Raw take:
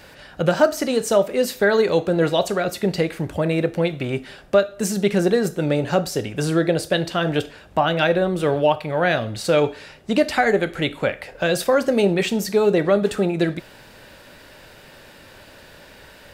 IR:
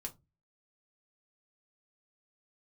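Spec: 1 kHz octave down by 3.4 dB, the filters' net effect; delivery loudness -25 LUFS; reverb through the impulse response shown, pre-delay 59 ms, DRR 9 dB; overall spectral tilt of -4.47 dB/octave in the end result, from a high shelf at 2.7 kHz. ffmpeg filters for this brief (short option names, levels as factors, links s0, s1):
-filter_complex "[0:a]equalizer=f=1000:t=o:g=-6,highshelf=f=2700:g=6,asplit=2[s0][s1];[1:a]atrim=start_sample=2205,adelay=59[s2];[s1][s2]afir=irnorm=-1:irlink=0,volume=0.473[s3];[s0][s3]amix=inputs=2:normalize=0,volume=0.596"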